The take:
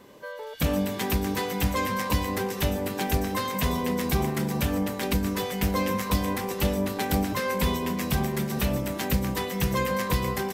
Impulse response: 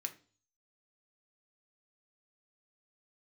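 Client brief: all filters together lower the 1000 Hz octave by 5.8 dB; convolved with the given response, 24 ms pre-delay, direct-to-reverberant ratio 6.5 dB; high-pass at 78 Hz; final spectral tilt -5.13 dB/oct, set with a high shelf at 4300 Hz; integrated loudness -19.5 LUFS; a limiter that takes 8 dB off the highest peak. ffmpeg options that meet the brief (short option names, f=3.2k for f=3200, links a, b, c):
-filter_complex "[0:a]highpass=78,equalizer=f=1k:t=o:g=-6.5,highshelf=f=4.3k:g=-6.5,alimiter=limit=-21dB:level=0:latency=1,asplit=2[a][b];[1:a]atrim=start_sample=2205,adelay=24[c];[b][c]afir=irnorm=-1:irlink=0,volume=-5dB[d];[a][d]amix=inputs=2:normalize=0,volume=11.5dB"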